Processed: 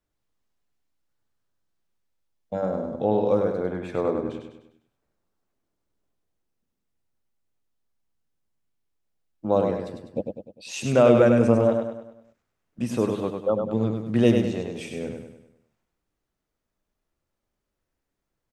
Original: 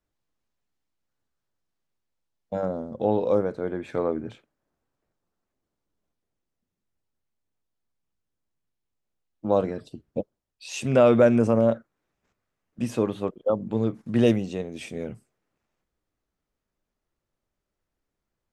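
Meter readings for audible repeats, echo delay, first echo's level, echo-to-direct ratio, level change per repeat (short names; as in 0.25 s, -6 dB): 5, 0.1 s, -5.0 dB, -4.0 dB, -6.5 dB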